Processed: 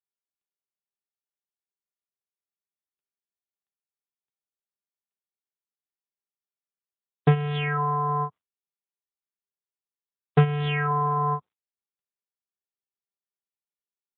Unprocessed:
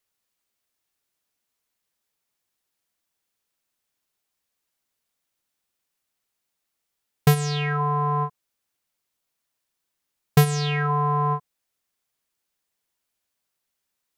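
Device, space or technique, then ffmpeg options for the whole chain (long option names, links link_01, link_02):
mobile call with aggressive noise cancelling: -af "highpass=110,afftdn=noise_reduction=20:noise_floor=-43" -ar 8000 -c:a libopencore_amrnb -b:a 7950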